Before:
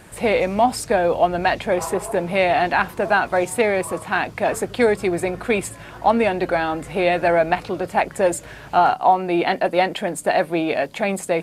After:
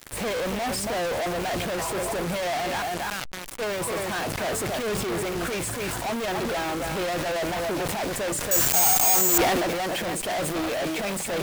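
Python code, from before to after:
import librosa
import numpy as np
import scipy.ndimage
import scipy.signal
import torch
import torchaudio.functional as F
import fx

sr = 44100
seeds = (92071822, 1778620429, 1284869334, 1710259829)

y = fx.tone_stack(x, sr, knobs='6-0-2', at=(2.81, 3.59), fade=0.02)
y = y + 10.0 ** (-11.0 / 20.0) * np.pad(y, (int(279 * sr / 1000.0), 0))[:len(y)]
y = fx.fuzz(y, sr, gain_db=43.0, gate_db=-40.0)
y = fx.cheby_harmonics(y, sr, harmonics=(6, 7), levels_db=(-14, -10), full_scale_db=-10.0)
y = fx.resample_bad(y, sr, factor=6, down='none', up='zero_stuff', at=(8.51, 9.38))
y = fx.sustainer(y, sr, db_per_s=23.0)
y = y * librosa.db_to_amplitude(-15.5)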